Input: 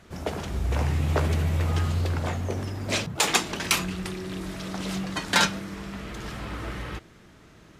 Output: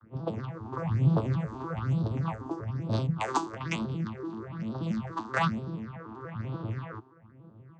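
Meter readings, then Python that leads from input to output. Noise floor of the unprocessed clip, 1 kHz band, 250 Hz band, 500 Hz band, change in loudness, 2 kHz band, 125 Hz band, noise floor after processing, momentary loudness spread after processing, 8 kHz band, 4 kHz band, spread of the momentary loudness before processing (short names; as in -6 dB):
-52 dBFS, -2.5 dB, -0.5 dB, -4.0 dB, -4.5 dB, -10.0 dB, -2.0 dB, -55 dBFS, 11 LU, -20.0 dB, -17.0 dB, 14 LU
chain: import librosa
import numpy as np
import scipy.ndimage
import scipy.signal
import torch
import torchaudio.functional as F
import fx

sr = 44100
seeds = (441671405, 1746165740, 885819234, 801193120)

y = fx.vocoder_arp(x, sr, chord='minor triad', root=45, every_ms=96)
y = fx.peak_eq(y, sr, hz=1100.0, db=10.0, octaves=0.82)
y = fx.phaser_stages(y, sr, stages=6, low_hz=140.0, high_hz=2100.0, hz=1.1, feedback_pct=30)
y = fx.env_lowpass(y, sr, base_hz=1500.0, full_db=-25.5)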